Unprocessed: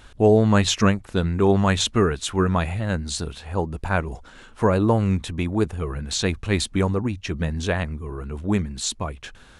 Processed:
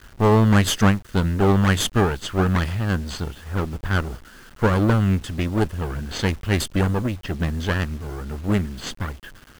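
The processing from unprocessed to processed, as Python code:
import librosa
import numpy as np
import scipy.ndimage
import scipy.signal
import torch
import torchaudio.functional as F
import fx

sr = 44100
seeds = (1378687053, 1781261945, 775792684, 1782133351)

y = fx.lower_of_two(x, sr, delay_ms=0.63)
y = fx.env_lowpass(y, sr, base_hz=1400.0, full_db=-18.0)
y = fx.quant_dither(y, sr, seeds[0], bits=8, dither='none')
y = y * librosa.db_to_amplitude(1.5)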